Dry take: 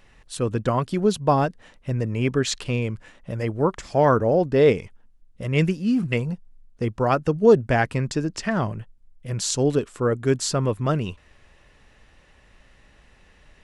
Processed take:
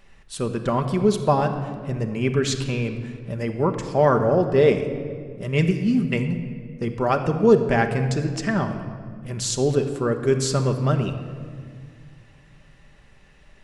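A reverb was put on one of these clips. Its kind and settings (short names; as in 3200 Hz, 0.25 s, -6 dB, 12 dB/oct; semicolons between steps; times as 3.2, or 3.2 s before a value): shoebox room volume 3600 m³, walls mixed, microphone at 1.2 m; gain -1 dB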